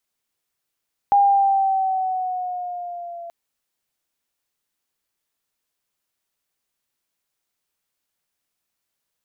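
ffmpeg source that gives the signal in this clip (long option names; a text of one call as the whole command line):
ffmpeg -f lavfi -i "aevalsrc='pow(10,(-11-21*t/2.18)/20)*sin(2*PI*809*2.18/(-3*log(2)/12)*(exp(-3*log(2)/12*t/2.18)-1))':duration=2.18:sample_rate=44100" out.wav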